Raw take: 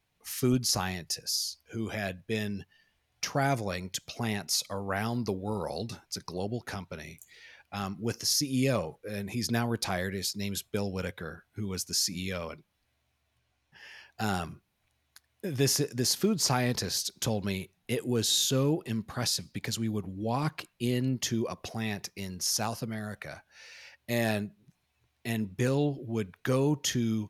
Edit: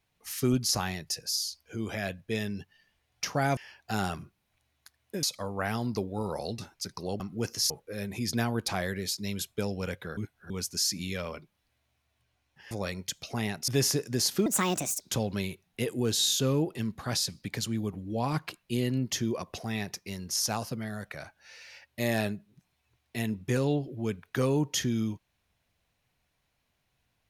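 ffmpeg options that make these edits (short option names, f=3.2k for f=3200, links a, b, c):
-filter_complex "[0:a]asplit=11[a][b][c][d][e][f][g][h][i][j][k];[a]atrim=end=3.572[l];[b]atrim=start=13.868:end=15.532[m];[c]atrim=start=4.538:end=6.512[n];[d]atrim=start=7.858:end=8.362[o];[e]atrim=start=8.858:end=11.332[p];[f]atrim=start=11.328:end=11.662,asetpts=PTS-STARTPTS,areverse[q];[g]atrim=start=11.658:end=13.872[r];[h]atrim=start=3.568:end=4.542[s];[i]atrim=start=15.528:end=16.314[t];[j]atrim=start=16.31:end=17.11,asetpts=PTS-STARTPTS,asetrate=64827,aresample=44100[u];[k]atrim=start=17.106[v];[l][m]acrossfade=d=0.004:c1=hsin:c2=hsin[w];[w][n]acrossfade=d=0.004:c1=hsin:c2=hsin[x];[x][o]acrossfade=d=0.004:c1=hsin:c2=hsin[y];[y][p]acrossfade=d=0.004:c1=hsin:c2=hsin[z];[z][q]acrossfade=d=0.004:c1=hsin:c2=hsin[aa];[aa][r]acrossfade=d=0.004:c1=hsin:c2=hsin[ab];[ab][s]acrossfade=d=0.004:c1=hsin:c2=hsin[ac];[ac][t]acrossfade=d=0.004:c1=hsin:c2=hsin[ad];[ad][u]acrossfade=d=0.004:c1=hsin:c2=hsin[ae];[ae][v]acrossfade=d=0.004:c1=hsin:c2=hsin"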